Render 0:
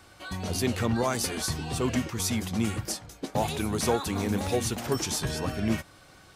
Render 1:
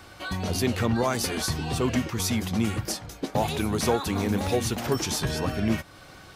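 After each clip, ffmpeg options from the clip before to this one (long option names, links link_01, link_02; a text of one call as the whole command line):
ffmpeg -i in.wav -filter_complex "[0:a]equalizer=frequency=8400:width=1.3:gain=-4.5,asplit=2[link_01][link_02];[link_02]acompressor=threshold=-36dB:ratio=6,volume=1dB[link_03];[link_01][link_03]amix=inputs=2:normalize=0" out.wav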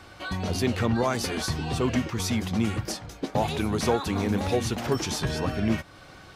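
ffmpeg -i in.wav -af "highshelf=frequency=9400:gain=-10.5" out.wav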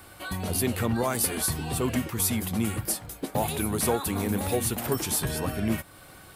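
ffmpeg -i in.wav -af "aexciter=amount=9.3:drive=3.3:freq=8300,volume=-2dB" out.wav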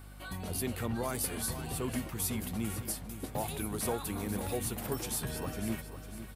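ffmpeg -i in.wav -af "aeval=exprs='val(0)+0.01*(sin(2*PI*50*n/s)+sin(2*PI*2*50*n/s)/2+sin(2*PI*3*50*n/s)/3+sin(2*PI*4*50*n/s)/4+sin(2*PI*5*50*n/s)/5)':channel_layout=same,aecho=1:1:501|1002|1503|2004:0.266|0.109|0.0447|0.0183,volume=-8.5dB" out.wav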